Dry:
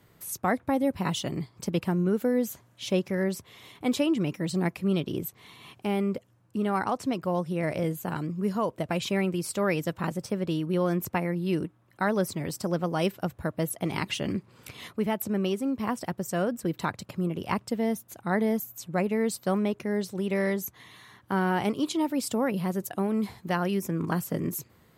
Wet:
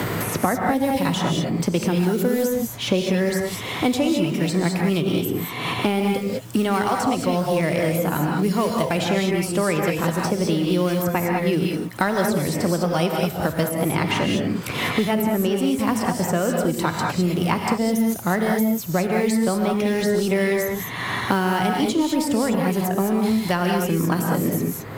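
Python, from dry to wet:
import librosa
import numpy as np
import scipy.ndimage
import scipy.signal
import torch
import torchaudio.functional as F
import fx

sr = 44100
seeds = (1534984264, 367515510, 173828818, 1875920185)

y = fx.law_mismatch(x, sr, coded='mu')
y = fx.rev_gated(y, sr, seeds[0], gate_ms=230, shape='rising', drr_db=1.0)
y = fx.band_squash(y, sr, depth_pct=100)
y = y * librosa.db_to_amplitude(3.5)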